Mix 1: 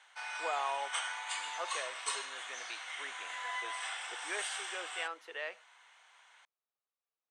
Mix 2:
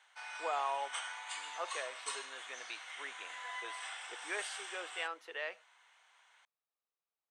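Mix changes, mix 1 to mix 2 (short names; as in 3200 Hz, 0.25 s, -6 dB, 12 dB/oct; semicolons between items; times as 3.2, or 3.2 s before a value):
background -6.5 dB; reverb: on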